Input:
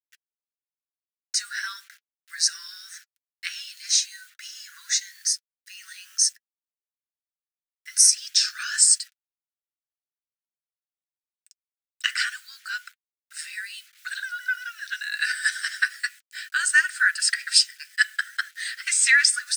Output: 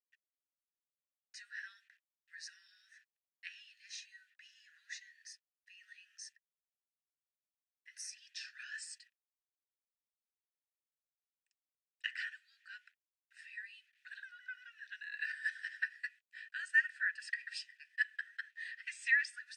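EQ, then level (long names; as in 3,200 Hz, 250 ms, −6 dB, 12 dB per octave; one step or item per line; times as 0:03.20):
formant filter e
−4.0 dB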